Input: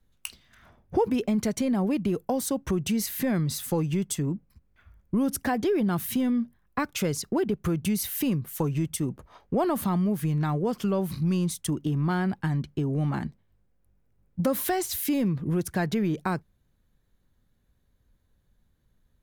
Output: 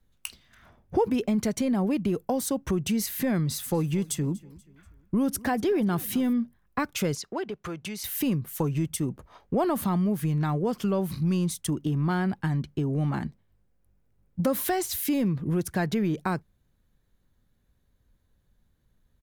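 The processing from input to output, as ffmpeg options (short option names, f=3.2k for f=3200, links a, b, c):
-filter_complex "[0:a]asplit=3[a][b][c];[a]afade=t=out:st=3.7:d=0.02[d];[b]aecho=1:1:241|482|723:0.0794|0.0342|0.0147,afade=t=in:st=3.7:d=0.02,afade=t=out:st=6.32:d=0.02[e];[c]afade=t=in:st=6.32:d=0.02[f];[d][e][f]amix=inputs=3:normalize=0,asettb=1/sr,asplit=3[g][h][i];[g]atrim=end=7.154[j];[h]atrim=start=7.15:end=8.04,asetpts=PTS-STARTPTS,afade=t=in:d=0.004:c=qsin,afade=t=out:st=0.886:d=0.004:c=qsin,acrossover=split=460 7200:gain=0.224 1 0.2[k][l][m];[k][l][m]amix=inputs=3:normalize=0[n];[i]atrim=start=8.036[o];[j][n]acrossfade=d=0.004:c1=hsin:c2=qsin[p];[p][o]acrossfade=d=0.004:c1=qsin:c2=hsin"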